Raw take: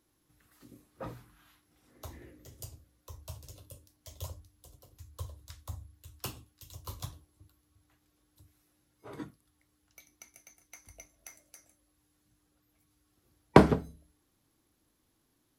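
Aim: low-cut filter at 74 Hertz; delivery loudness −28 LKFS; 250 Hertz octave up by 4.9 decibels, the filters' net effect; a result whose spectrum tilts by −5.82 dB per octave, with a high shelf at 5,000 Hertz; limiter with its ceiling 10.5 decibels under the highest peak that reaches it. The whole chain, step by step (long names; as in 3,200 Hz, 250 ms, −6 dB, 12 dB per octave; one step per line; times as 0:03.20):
high-pass filter 74 Hz
parametric band 250 Hz +6.5 dB
high-shelf EQ 5,000 Hz +6 dB
level +8 dB
brickwall limiter −2 dBFS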